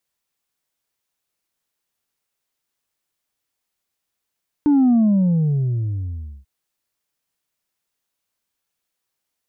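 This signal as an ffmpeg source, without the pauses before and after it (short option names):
-f lavfi -i "aevalsrc='0.251*clip((1.79-t)/1.54,0,1)*tanh(1.26*sin(2*PI*300*1.79/log(65/300)*(exp(log(65/300)*t/1.79)-1)))/tanh(1.26)':d=1.79:s=44100"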